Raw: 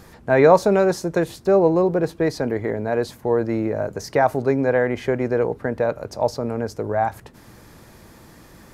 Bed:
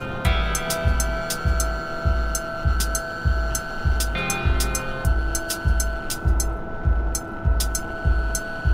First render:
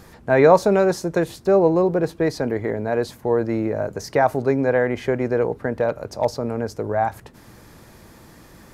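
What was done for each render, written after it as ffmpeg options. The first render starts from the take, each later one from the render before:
-filter_complex "[0:a]asettb=1/sr,asplit=3[a][b][c];[a]atrim=end=5.744[d];[b]atrim=start=5.74:end=6.25,asetpts=PTS-STARTPTS,afade=t=in:d=0.004:c=qsin,afade=t=out:st=0.506:d=0.004:c=qsin,asoftclip=type=hard:threshold=-11dB[e];[c]atrim=start=6.246[f];[d][e]acrossfade=d=0.004:c1=hsin:c2=qsin[g];[g][f]acrossfade=d=0.004:c1=qsin:c2=hsin"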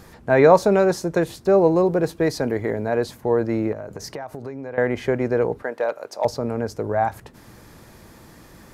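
-filter_complex "[0:a]asettb=1/sr,asplit=3[a][b][c];[a]atrim=end=1.584[d];[b]atrim=start=1.58:end=2.88,asetpts=PTS-STARTPTS,afade=t=in:d=0.004:c=qsin,afade=t=out:st=1.296:d=0.004:c=qsin,highshelf=f=4.9k:g=5.5[e];[c]atrim=start=2.876[f];[d][e]acrossfade=d=0.004:c1=hsin:c2=qsin[g];[g][f]acrossfade=d=0.004:c1=qsin:c2=hsin,asettb=1/sr,asplit=3[h][i][j];[h]atrim=end=3.724[k];[i]atrim=start=3.72:end=4.78,asetpts=PTS-STARTPTS,afade=t=in:d=0.004:c=qsin,afade=t=out:st=1.056:d=0.004:c=qsin,acompressor=threshold=-28dB:ratio=16:attack=3.2:release=140:knee=1:detection=peak[l];[j]atrim=start=4.776[m];[k][l]acrossfade=d=0.004:c1=hsin:c2=qsin[n];[n][m]acrossfade=d=0.004:c1=qsin:c2=hsin,asettb=1/sr,asplit=3[o][p][q];[o]atrim=end=5.624[r];[p]atrim=start=5.62:end=6.25,asetpts=PTS-STARTPTS,afade=t=in:d=0.004:c=qsin,afade=t=out:st=0.626:d=0.004:c=qsin,highpass=480[s];[q]atrim=start=6.246[t];[r][s]acrossfade=d=0.004:c1=hsin:c2=qsin[u];[u][t]acrossfade=d=0.004:c1=qsin:c2=hsin"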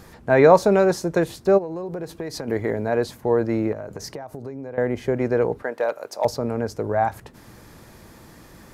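-filter_complex "[0:a]asplit=3[a][b][c];[a]afade=t=out:st=1.57:d=0.02[d];[b]acompressor=threshold=-26dB:ratio=12:attack=3.2:release=140:knee=1:detection=peak,afade=t=in:st=1.57:d=0.02,afade=t=out:st=2.47:d=0.02[e];[c]afade=t=in:st=2.47:d=0.02[f];[d][e][f]amix=inputs=3:normalize=0,asettb=1/sr,asplit=3[g][h][i];[g]atrim=end=4.134[j];[h]atrim=start=4.13:end=5.17,asetpts=PTS-STARTPTS,afade=t=in:d=0.004:c=qsin,afade=t=out:st=1.036:d=0.004:c=qsin,equalizer=f=2k:t=o:w=2.7:g=-6.5[k];[i]atrim=start=5.166[l];[j][k]acrossfade=d=0.004:c1=hsin:c2=qsin[m];[m][l]acrossfade=d=0.004:c1=qsin:c2=hsin,asettb=1/sr,asplit=3[n][o][p];[n]atrim=end=5.784[q];[o]atrim=start=5.78:end=6.36,asetpts=PTS-STARTPTS,afade=t=in:d=0.004:c=qsin,afade=t=out:st=0.576:d=0.004:c=qsin,highshelf=f=10k:g=7.5[r];[p]atrim=start=6.356[s];[q][r]acrossfade=d=0.004:c1=hsin:c2=qsin[t];[t][s]acrossfade=d=0.004:c1=qsin:c2=hsin"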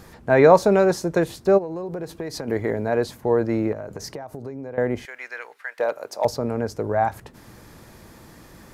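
-filter_complex "[0:a]asettb=1/sr,asplit=3[a][b][c];[a]atrim=end=5.054[d];[b]atrim=start=5.05:end=5.79,asetpts=PTS-STARTPTS,afade=t=in:d=0.004:c=qsin,afade=t=out:st=0.736:d=0.004:c=qsin,highpass=f=1.9k:t=q:w=1.5[e];[c]atrim=start=5.786[f];[d][e]acrossfade=d=0.004:c1=hsin:c2=qsin[g];[g][f]acrossfade=d=0.004:c1=qsin:c2=hsin"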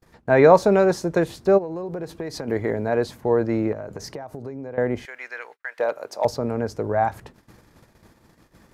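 -af "agate=range=-38dB:threshold=-44dB:ratio=16:detection=peak,highshelf=f=8k:g=-6"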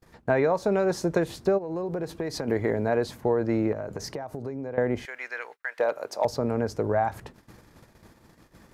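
-af "acompressor=threshold=-19dB:ratio=16"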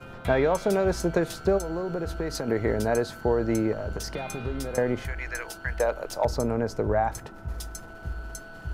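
-filter_complex "[1:a]volume=-14dB[a];[0:a][a]amix=inputs=2:normalize=0"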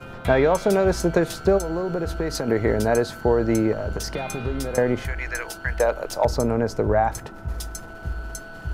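-af "volume=4.5dB"

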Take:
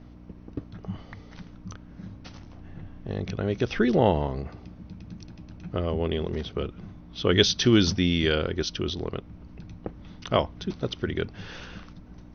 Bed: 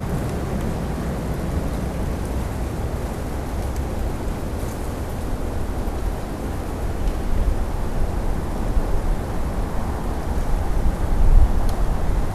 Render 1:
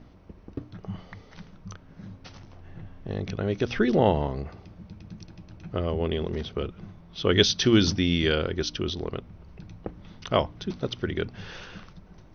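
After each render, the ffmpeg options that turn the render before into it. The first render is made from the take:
-af "bandreject=f=60:t=h:w=4,bandreject=f=120:t=h:w=4,bandreject=f=180:t=h:w=4,bandreject=f=240:t=h:w=4,bandreject=f=300:t=h:w=4"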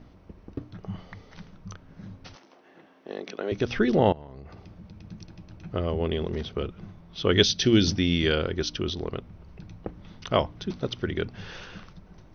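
-filter_complex "[0:a]asettb=1/sr,asplit=3[a][b][c];[a]atrim=end=2.354[d];[b]atrim=start=2.35:end=3.52,asetpts=PTS-STARTPTS,afade=t=in:d=0.004:c=qsin,afade=t=out:st=1.166:d=0.004:c=qsin,highpass=f=280:w=0.5412,highpass=f=280:w=1.3066[e];[c]atrim=start=3.516[f];[d][e]acrossfade=d=0.004:c1=hsin:c2=qsin[g];[g][f]acrossfade=d=0.004:c1=qsin:c2=hsin,asettb=1/sr,asplit=3[h][i][j];[h]atrim=end=4.124[k];[i]atrim=start=4.12:end=5.05,asetpts=PTS-STARTPTS,afade=t=in:d=0.004:c=qsin,afade=t=out:st=0.926:d=0.004:c=qsin,acompressor=threshold=-39dB:ratio=10:attack=3.2:release=140:knee=1:detection=peak[l];[j]atrim=start=5.046[m];[k][l]acrossfade=d=0.004:c1=hsin:c2=qsin[n];[n][m]acrossfade=d=0.004:c1=qsin:c2=hsin,asettb=1/sr,asplit=3[o][p][q];[o]atrim=end=7.434[r];[p]atrim=start=7.43:end=7.93,asetpts=PTS-STARTPTS,afade=t=in:d=0.004:c=qsin,afade=t=out:st=0.496:d=0.004:c=qsin,equalizer=f=1.1k:w=1.9:g=-10[s];[q]atrim=start=7.926[t];[r][s]acrossfade=d=0.004:c1=hsin:c2=qsin[u];[u][t]acrossfade=d=0.004:c1=qsin:c2=hsin"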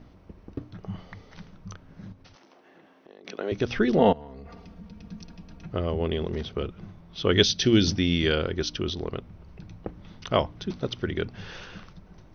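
-filter_complex "[0:a]asettb=1/sr,asplit=3[a][b][c];[a]atrim=end=2.124[d];[b]atrim=start=2.12:end=3.25,asetpts=PTS-STARTPTS,afade=t=in:d=0.004:c=qsin,afade=t=out:st=1.126:d=0.004:c=qsin,acompressor=threshold=-50dB:ratio=3:attack=3.2:release=140:knee=1:detection=peak[e];[c]atrim=start=3.246[f];[d][e]acrossfade=d=0.004:c1=hsin:c2=qsin[g];[g][f]acrossfade=d=0.004:c1=qsin:c2=hsin,asettb=1/sr,asplit=3[h][i][j];[h]atrim=end=3.994[k];[i]atrim=start=3.99:end=5.66,asetpts=PTS-STARTPTS,afade=t=in:d=0.004:c=qsin,afade=t=out:st=1.666:d=0.004:c=qsin,aecho=1:1:4.3:0.76,atrim=end_sample=73647[l];[j]atrim=start=5.656[m];[k][l]acrossfade=d=0.004:c1=hsin:c2=qsin[n];[n][m]acrossfade=d=0.004:c1=qsin:c2=hsin"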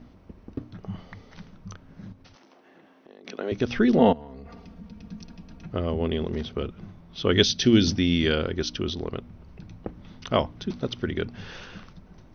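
-af "equalizer=f=240:t=o:w=0.21:g=7"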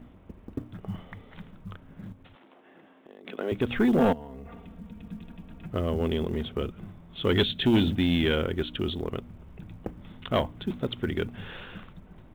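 -af "aresample=8000,asoftclip=type=tanh:threshold=-15.5dB,aresample=44100,acrusher=bits=9:mode=log:mix=0:aa=0.000001"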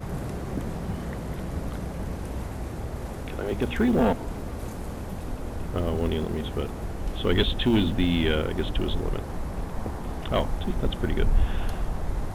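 -filter_complex "[1:a]volume=-8dB[a];[0:a][a]amix=inputs=2:normalize=0"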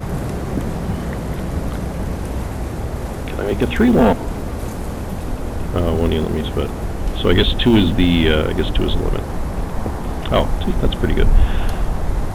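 -af "volume=9dB,alimiter=limit=-1dB:level=0:latency=1"

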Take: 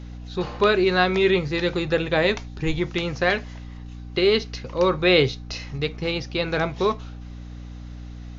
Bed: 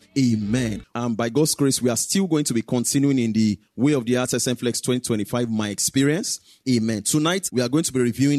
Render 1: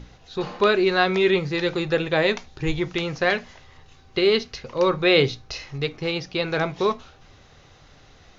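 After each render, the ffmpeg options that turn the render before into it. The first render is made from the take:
-af "bandreject=f=60:t=h:w=6,bandreject=f=120:t=h:w=6,bandreject=f=180:t=h:w=6,bandreject=f=240:t=h:w=6,bandreject=f=300:t=h:w=6"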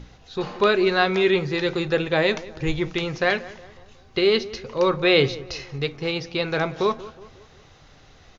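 -filter_complex "[0:a]asplit=2[a][b];[b]adelay=182,lowpass=f=1.6k:p=1,volume=-17dB,asplit=2[c][d];[d]adelay=182,lowpass=f=1.6k:p=1,volume=0.5,asplit=2[e][f];[f]adelay=182,lowpass=f=1.6k:p=1,volume=0.5,asplit=2[g][h];[h]adelay=182,lowpass=f=1.6k:p=1,volume=0.5[i];[a][c][e][g][i]amix=inputs=5:normalize=0"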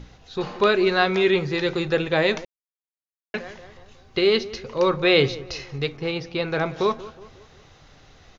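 -filter_complex "[0:a]asettb=1/sr,asplit=3[a][b][c];[a]atrim=end=5.974[d];[b]atrim=start=5.97:end=6.66,asetpts=PTS-STARTPTS,afade=t=in:d=0.004:c=qsin,afade=t=out:st=0.686:d=0.004:c=qsin,highshelf=f=3.5k:g=-6.5[e];[c]atrim=start=6.656[f];[d][e]acrossfade=d=0.004:c1=hsin:c2=qsin[g];[g][f]acrossfade=d=0.004:c1=qsin:c2=hsin,asplit=3[h][i][j];[h]atrim=end=2.45,asetpts=PTS-STARTPTS,afade=t=out:st=2.446:d=0.004:c=hsin[k];[i]atrim=start=2.45:end=3.34,asetpts=PTS-STARTPTS,volume=0[l];[j]atrim=start=3.34,asetpts=PTS-STARTPTS,afade=t=in:d=0.004:c=hsin[m];[k][l][m]concat=n=3:v=0:a=1"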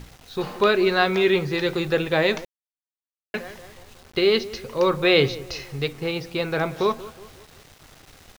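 -af "acrusher=bits=7:mix=0:aa=0.000001"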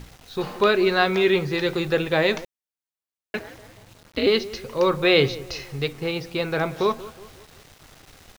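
-filter_complex "[0:a]asettb=1/sr,asplit=3[a][b][c];[a]atrim=end=3.394[d];[b]atrim=start=3.39:end=4.27,asetpts=PTS-STARTPTS,afade=t=in:d=0.004:c=qsin,afade=t=out:st=0.876:d=0.004:c=qsin,aeval=exprs='val(0)*sin(2*PI*110*n/s)':c=same[e];[c]atrim=start=4.266[f];[d][e]acrossfade=d=0.004:c1=hsin:c2=qsin[g];[g][f]acrossfade=d=0.004:c1=qsin:c2=hsin"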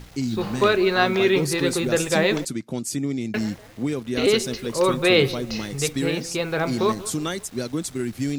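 -filter_complex "[1:a]volume=-7dB[a];[0:a][a]amix=inputs=2:normalize=0"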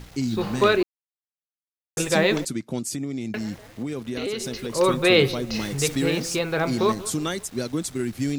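-filter_complex "[0:a]asettb=1/sr,asplit=3[a][b][c];[a]atrim=end=2.864[d];[b]atrim=start=2.86:end=4.76,asetpts=PTS-STARTPTS,afade=t=in:d=0.004:c=qsin,afade=t=out:st=1.896:d=0.004:c=qsin,acompressor=threshold=-25dB:ratio=6:attack=3.2:release=140:knee=1:detection=peak[e];[c]atrim=start=4.756[f];[d][e]acrossfade=d=0.004:c1=hsin:c2=qsin[g];[g][f]acrossfade=d=0.004:c1=qsin:c2=hsin,asettb=1/sr,asplit=3[h][i][j];[h]atrim=end=5.544[k];[i]atrim=start=5.54:end=6.39,asetpts=PTS-STARTPTS,afade=t=in:d=0.004:c=qsin,afade=t=out:st=0.846:d=0.004:c=qsin,aeval=exprs='val(0)+0.5*0.0188*sgn(val(0))':c=same[l];[j]atrim=start=6.386[m];[k][l]acrossfade=d=0.004:c1=hsin:c2=qsin[n];[n][m]acrossfade=d=0.004:c1=qsin:c2=hsin,asplit=3[o][p][q];[o]atrim=end=0.83,asetpts=PTS-STARTPTS,afade=t=out:st=0.826:d=0.004:c=hsin[r];[p]atrim=start=0.83:end=1.97,asetpts=PTS-STARTPTS,volume=0[s];[q]atrim=start=1.97,asetpts=PTS-STARTPTS,afade=t=in:d=0.004:c=hsin[t];[r][s][t]concat=n=3:v=0:a=1"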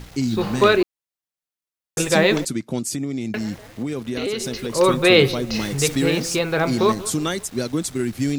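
-af "volume=3.5dB"

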